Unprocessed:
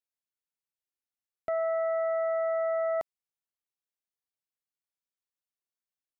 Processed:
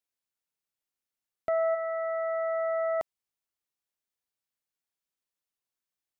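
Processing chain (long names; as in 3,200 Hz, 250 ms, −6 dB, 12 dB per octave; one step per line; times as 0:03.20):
0:01.74–0:02.99: high-pass filter 1,300 Hz → 550 Hz 6 dB per octave
level +2.5 dB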